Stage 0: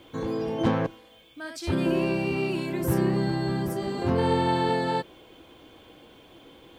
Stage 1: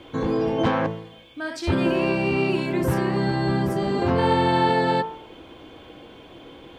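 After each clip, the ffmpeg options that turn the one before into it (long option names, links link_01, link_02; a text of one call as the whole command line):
ffmpeg -i in.wav -filter_complex "[0:a]aemphasis=mode=reproduction:type=50kf,bandreject=frequency=55.51:width_type=h:width=4,bandreject=frequency=111.02:width_type=h:width=4,bandreject=frequency=166.53:width_type=h:width=4,bandreject=frequency=222.04:width_type=h:width=4,bandreject=frequency=277.55:width_type=h:width=4,bandreject=frequency=333.06:width_type=h:width=4,bandreject=frequency=388.57:width_type=h:width=4,bandreject=frequency=444.08:width_type=h:width=4,bandreject=frequency=499.59:width_type=h:width=4,bandreject=frequency=555.1:width_type=h:width=4,bandreject=frequency=610.61:width_type=h:width=4,bandreject=frequency=666.12:width_type=h:width=4,bandreject=frequency=721.63:width_type=h:width=4,bandreject=frequency=777.14:width_type=h:width=4,bandreject=frequency=832.65:width_type=h:width=4,bandreject=frequency=888.16:width_type=h:width=4,bandreject=frequency=943.67:width_type=h:width=4,bandreject=frequency=999.18:width_type=h:width=4,bandreject=frequency=1054.69:width_type=h:width=4,bandreject=frequency=1110.2:width_type=h:width=4,bandreject=frequency=1165.71:width_type=h:width=4,bandreject=frequency=1221.22:width_type=h:width=4,bandreject=frequency=1276.73:width_type=h:width=4,bandreject=frequency=1332.24:width_type=h:width=4,bandreject=frequency=1387.75:width_type=h:width=4,bandreject=frequency=1443.26:width_type=h:width=4,bandreject=frequency=1498.77:width_type=h:width=4,bandreject=frequency=1554.28:width_type=h:width=4,bandreject=frequency=1609.79:width_type=h:width=4,bandreject=frequency=1665.3:width_type=h:width=4,bandreject=frequency=1720.81:width_type=h:width=4,bandreject=frequency=1776.32:width_type=h:width=4,bandreject=frequency=1831.83:width_type=h:width=4,bandreject=frequency=1887.34:width_type=h:width=4,bandreject=frequency=1942.85:width_type=h:width=4,bandreject=frequency=1998.36:width_type=h:width=4,bandreject=frequency=2053.87:width_type=h:width=4,acrossover=split=650[link_01][link_02];[link_01]alimiter=limit=-22.5dB:level=0:latency=1:release=494[link_03];[link_03][link_02]amix=inputs=2:normalize=0,volume=8dB" out.wav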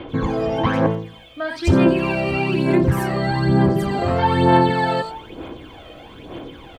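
ffmpeg -i in.wav -filter_complex "[0:a]aphaser=in_gain=1:out_gain=1:delay=1.6:decay=0.6:speed=1.1:type=sinusoidal,acrossover=split=4600[link_01][link_02];[link_02]adelay=90[link_03];[link_01][link_03]amix=inputs=2:normalize=0,asplit=2[link_04][link_05];[link_05]acompressor=threshold=-23dB:ratio=6,volume=0dB[link_06];[link_04][link_06]amix=inputs=2:normalize=0,volume=-2dB" out.wav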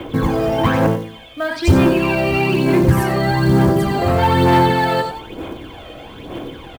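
ffmpeg -i in.wav -filter_complex "[0:a]acrossover=split=150|3100[link_01][link_02][link_03];[link_02]asoftclip=type=tanh:threshold=-14dB[link_04];[link_01][link_04][link_03]amix=inputs=3:normalize=0,acrusher=bits=7:mode=log:mix=0:aa=0.000001,aecho=1:1:94:0.251,volume=4.5dB" out.wav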